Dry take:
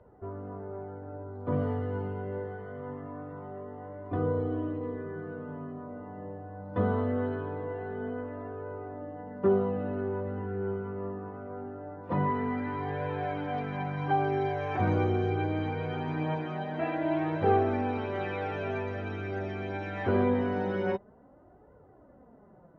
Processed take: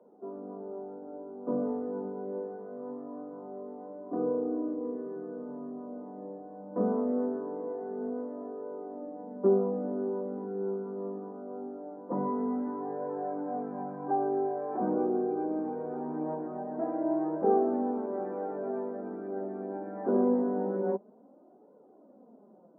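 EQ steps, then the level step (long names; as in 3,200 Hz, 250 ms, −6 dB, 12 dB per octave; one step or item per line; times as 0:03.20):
Gaussian smoothing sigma 8.1 samples
Chebyshev high-pass filter 210 Hz, order 4
high-frequency loss of the air 420 metres
+3.0 dB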